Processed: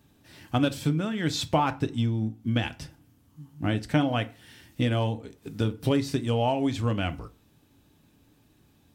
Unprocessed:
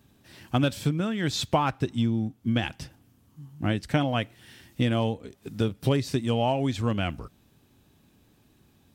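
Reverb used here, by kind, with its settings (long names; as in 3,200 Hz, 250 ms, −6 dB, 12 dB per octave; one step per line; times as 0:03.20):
feedback delay network reverb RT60 0.35 s, low-frequency decay 1.1×, high-frequency decay 0.7×, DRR 9.5 dB
level −1 dB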